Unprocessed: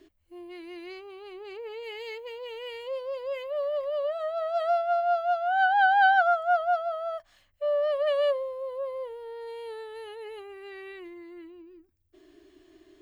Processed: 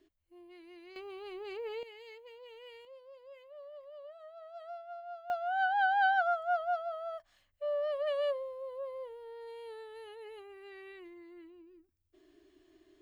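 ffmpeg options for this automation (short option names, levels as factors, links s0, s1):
-af "asetnsamples=n=441:p=0,asendcmd='0.96 volume volume -1dB;1.83 volume volume -13dB;2.85 volume volume -20dB;5.3 volume volume -7.5dB',volume=0.266"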